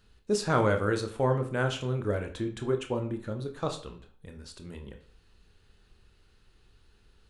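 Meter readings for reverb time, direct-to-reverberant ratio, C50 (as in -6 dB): 0.45 s, 4.5 dB, 11.5 dB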